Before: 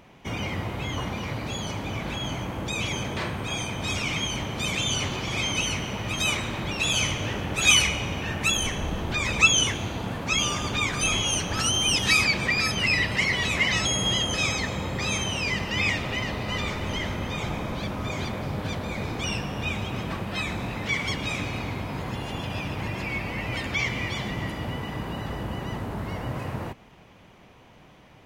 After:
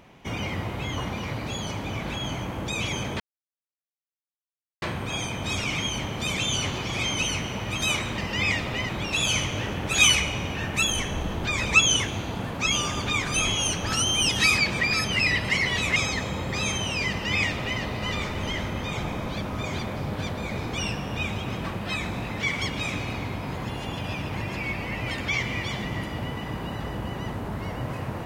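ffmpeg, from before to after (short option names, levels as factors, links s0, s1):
-filter_complex "[0:a]asplit=5[s0][s1][s2][s3][s4];[s0]atrim=end=3.2,asetpts=PTS-STARTPTS,afade=t=out:st=3.196:d=0.004:c=hsin,apad=pad_dur=1.62[s5];[s1]atrim=start=3.2:end=6.562,asetpts=PTS-STARTPTS,afade=t=in:d=0.004:c=hsin[s6];[s2]atrim=start=15.558:end=16.272[s7];[s3]atrim=start=6.558:end=13.632[s8];[s4]atrim=start=14.418[s9];[s5][s6]concat=n=2:v=0:a=1[s10];[s10][s7]acrossfade=d=0.004:c1=hsin:c2=hsin[s11];[s11][s8]acrossfade=d=0.004:c1=hsin:c2=hsin[s12];[s12][s9]acrossfade=d=0.004:c1=hsin:c2=hsin"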